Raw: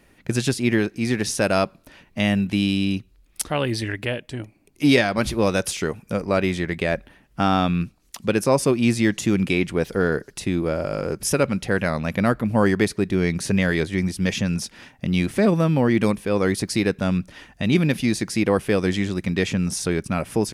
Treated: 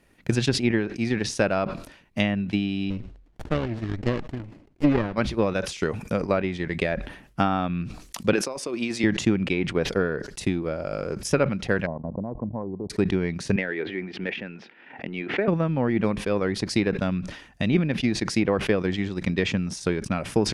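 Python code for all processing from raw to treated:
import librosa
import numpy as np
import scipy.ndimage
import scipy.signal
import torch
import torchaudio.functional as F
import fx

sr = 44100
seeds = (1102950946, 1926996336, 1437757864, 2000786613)

y = fx.chain(x, sr, fx.lowpass(hz=3700.0, slope=12),
    fx.running_max(window=33), at=(2.9, 5.13))
y = fx.chain(y, sr, fx.highpass(hz=320.0, slope=12),
    fx.over_compress(threshold_db=-24.0, ratio=-1.0), at=(8.33, 9.04))
y = fx.chain(y, sr, fx.level_steps(step_db=13),
    fx.brickwall_lowpass(high_hz=1100.0), at=(11.86, 12.9))
y = fx.chain(y, sr, fx.cabinet(low_hz=360.0, low_slope=12, high_hz=2600.0, hz=(370.0, 590.0, 1100.0), db=(3, -4, -7)),
    fx.pre_swell(db_per_s=62.0), at=(13.56, 15.48))
y = fx.env_lowpass_down(y, sr, base_hz=2500.0, full_db=-15.5)
y = fx.transient(y, sr, attack_db=7, sustain_db=-5)
y = fx.sustainer(y, sr, db_per_s=86.0)
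y = y * librosa.db_to_amplitude(-6.0)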